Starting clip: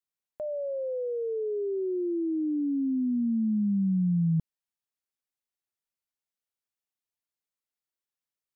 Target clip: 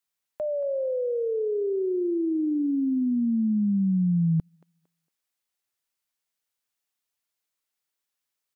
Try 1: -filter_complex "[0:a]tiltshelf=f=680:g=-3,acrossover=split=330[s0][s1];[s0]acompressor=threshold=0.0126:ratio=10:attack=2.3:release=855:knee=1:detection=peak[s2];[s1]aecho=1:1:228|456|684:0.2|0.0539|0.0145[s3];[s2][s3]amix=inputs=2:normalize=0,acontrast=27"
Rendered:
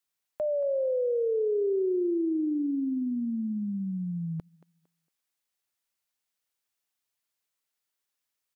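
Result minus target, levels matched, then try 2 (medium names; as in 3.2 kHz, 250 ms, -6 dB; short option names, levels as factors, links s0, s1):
compression: peak gain reduction +12.5 dB
-filter_complex "[0:a]tiltshelf=f=680:g=-3,acrossover=split=330[s0][s1];[s1]aecho=1:1:228|456|684:0.2|0.0539|0.0145[s2];[s0][s2]amix=inputs=2:normalize=0,acontrast=27"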